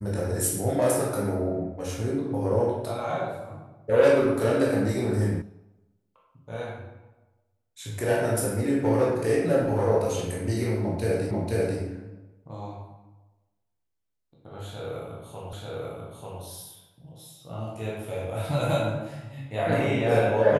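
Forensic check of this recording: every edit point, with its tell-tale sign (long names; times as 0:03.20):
0:05.42: cut off before it has died away
0:11.31: the same again, the last 0.49 s
0:15.53: the same again, the last 0.89 s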